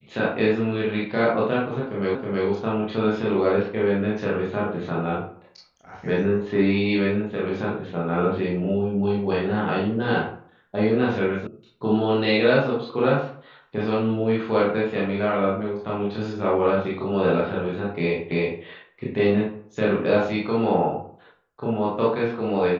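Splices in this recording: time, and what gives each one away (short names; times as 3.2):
2.15 repeat of the last 0.32 s
11.47 sound cut off
18.31 repeat of the last 0.32 s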